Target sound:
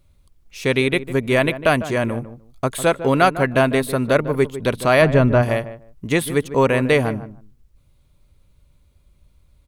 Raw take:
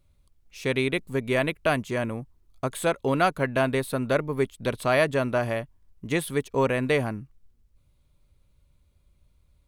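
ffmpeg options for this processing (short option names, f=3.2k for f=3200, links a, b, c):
-filter_complex "[0:a]asplit=3[a][b][c];[a]afade=t=out:st=5.01:d=0.02[d];[b]aemphasis=mode=reproduction:type=bsi,afade=t=in:st=5.01:d=0.02,afade=t=out:st=5.41:d=0.02[e];[c]afade=t=in:st=5.41:d=0.02[f];[d][e][f]amix=inputs=3:normalize=0,asplit=2[g][h];[h]adelay=151,lowpass=f=1.1k:p=1,volume=-12dB,asplit=2[i][j];[j]adelay=151,lowpass=f=1.1k:p=1,volume=0.19[k];[g][i][k]amix=inputs=3:normalize=0,volume=7dB"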